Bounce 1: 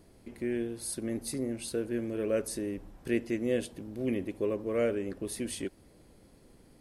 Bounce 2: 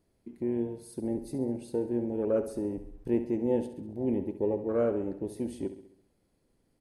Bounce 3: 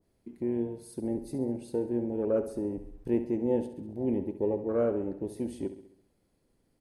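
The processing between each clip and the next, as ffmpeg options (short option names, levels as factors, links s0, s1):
-filter_complex "[0:a]afwtdn=0.02,asplit=2[s0][s1];[s1]aecho=0:1:67|134|201|268|335|402:0.266|0.141|0.0747|0.0396|0.021|0.0111[s2];[s0][s2]amix=inputs=2:normalize=0,volume=1.26"
-af "adynamicequalizer=threshold=0.00562:dfrequency=1600:dqfactor=0.7:tfrequency=1600:tqfactor=0.7:attack=5:release=100:ratio=0.375:range=2:mode=cutabove:tftype=highshelf"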